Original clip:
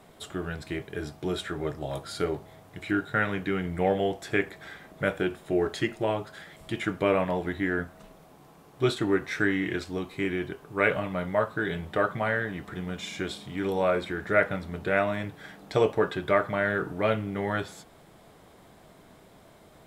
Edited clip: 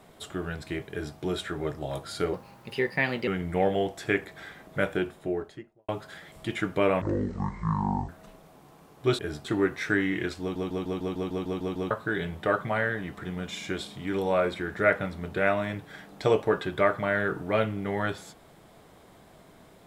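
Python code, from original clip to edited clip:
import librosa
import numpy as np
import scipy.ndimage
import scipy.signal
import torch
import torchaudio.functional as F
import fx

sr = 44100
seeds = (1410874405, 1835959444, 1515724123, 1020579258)

y = fx.studio_fade_out(x, sr, start_s=5.14, length_s=0.99)
y = fx.edit(y, sr, fx.duplicate(start_s=0.91, length_s=0.26, to_s=8.95),
    fx.speed_span(start_s=2.33, length_s=1.19, speed=1.26),
    fx.speed_span(start_s=7.26, length_s=0.59, speed=0.55),
    fx.stutter_over(start_s=9.91, slice_s=0.15, count=10), tone=tone)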